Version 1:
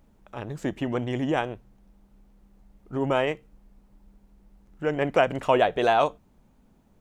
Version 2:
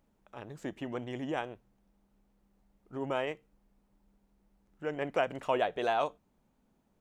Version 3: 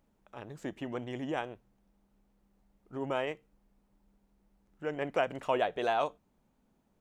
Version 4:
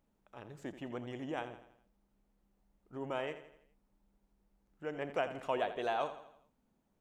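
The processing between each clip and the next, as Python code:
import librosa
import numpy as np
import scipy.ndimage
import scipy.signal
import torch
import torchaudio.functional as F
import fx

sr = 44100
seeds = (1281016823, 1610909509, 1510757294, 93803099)

y1 = fx.low_shelf(x, sr, hz=140.0, db=-8.0)
y1 = y1 * 10.0 ** (-8.5 / 20.0)
y2 = y1
y3 = fx.echo_feedback(y2, sr, ms=83, feedback_pct=48, wet_db=-12)
y3 = y3 * 10.0 ** (-5.0 / 20.0)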